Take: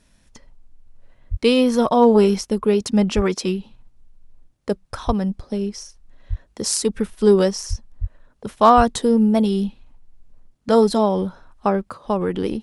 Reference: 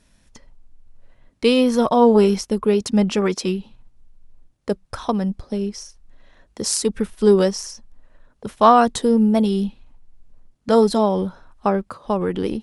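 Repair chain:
clipped peaks rebuilt −3.5 dBFS
high-pass at the plosives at 0:01.30/0:03.15/0:05.06/0:06.29/0:07.69/0:08.00/0:08.76

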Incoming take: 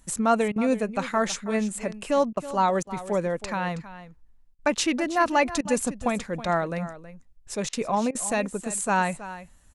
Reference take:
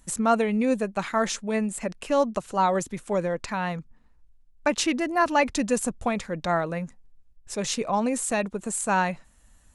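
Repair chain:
repair the gap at 0:00.52/0:02.33/0:02.83/0:04.55/0:05.61/0:07.69/0:08.11, 39 ms
echo removal 322 ms −14.5 dB

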